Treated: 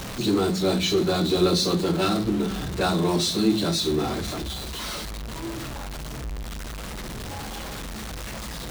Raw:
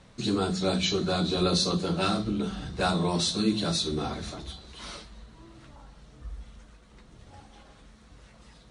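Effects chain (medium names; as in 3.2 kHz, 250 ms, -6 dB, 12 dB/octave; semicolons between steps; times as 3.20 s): jump at every zero crossing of -29 dBFS; dynamic bell 350 Hz, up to +7 dB, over -42 dBFS, Q 3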